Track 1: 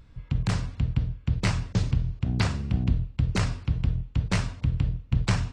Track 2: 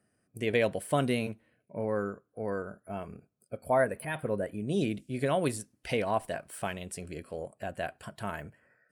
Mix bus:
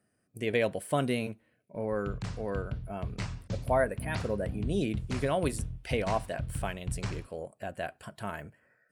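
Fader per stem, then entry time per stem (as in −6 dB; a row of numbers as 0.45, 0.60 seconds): −11.0, −1.0 decibels; 1.75, 0.00 seconds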